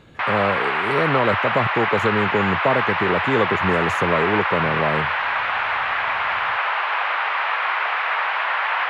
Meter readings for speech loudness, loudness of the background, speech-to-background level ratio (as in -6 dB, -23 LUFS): -23.0 LUFS, -21.0 LUFS, -2.0 dB